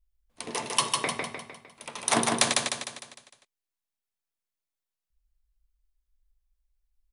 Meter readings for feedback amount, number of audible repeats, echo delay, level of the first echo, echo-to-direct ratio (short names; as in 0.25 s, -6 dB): 48%, 6, 0.152 s, -3.0 dB, -2.0 dB